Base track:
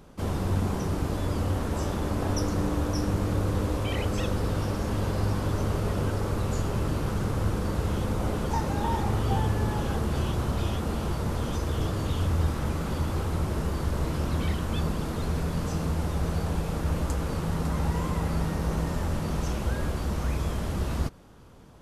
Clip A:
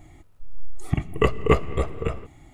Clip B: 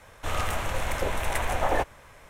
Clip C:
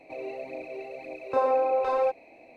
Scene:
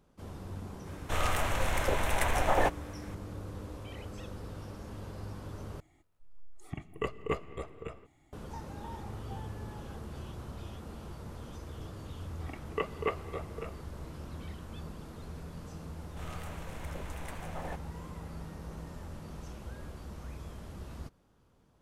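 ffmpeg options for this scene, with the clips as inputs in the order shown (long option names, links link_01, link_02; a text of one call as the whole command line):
ffmpeg -i bed.wav -i cue0.wav -i cue1.wav -filter_complex "[2:a]asplit=2[link_01][link_02];[1:a]asplit=2[link_03][link_04];[0:a]volume=-15.5dB[link_05];[link_03]lowshelf=frequency=140:gain=-8[link_06];[link_04]highpass=400,lowpass=3500[link_07];[link_02]acrusher=bits=10:mix=0:aa=0.000001[link_08];[link_05]asplit=2[link_09][link_10];[link_09]atrim=end=5.804[link_11];[link_06]atrim=end=2.53,asetpts=PTS-STARTPTS,volume=-13dB[link_12];[link_10]atrim=start=8.326[link_13];[link_01]atrim=end=2.29,asetpts=PTS-STARTPTS,volume=-1.5dB,afade=type=in:duration=0.004:curve=hsin,afade=type=out:start_time=2.286:duration=0.004:curve=hsin,adelay=860[link_14];[link_07]atrim=end=2.53,asetpts=PTS-STARTPTS,volume=-10.5dB,afade=type=in:duration=0.004:curve=hsin,afade=type=out:start_time=2.526:duration=0.004:curve=hsin,adelay=11560[link_15];[link_08]atrim=end=2.29,asetpts=PTS-STARTPTS,volume=-16.5dB,afade=type=in:duration=0.004:curve=hsin,afade=type=out:start_time=2.286:duration=0.004:curve=hsin,adelay=15930[link_16];[link_11][link_12]acrossfade=duration=0.004:curve1=hsin:curve2=hsin[link_17];[link_17][link_13]acrossfade=duration=0.004:curve1=hsin:curve2=hsin[link_18];[link_18][link_14][link_15][link_16]amix=inputs=4:normalize=0" out.wav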